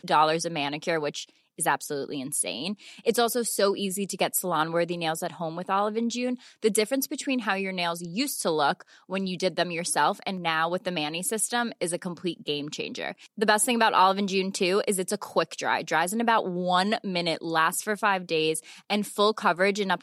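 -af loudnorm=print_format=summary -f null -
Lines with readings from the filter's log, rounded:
Input Integrated:    -26.3 LUFS
Input True Peak:      -6.2 dBTP
Input LRA:             2.7 LU
Input Threshold:     -36.3 LUFS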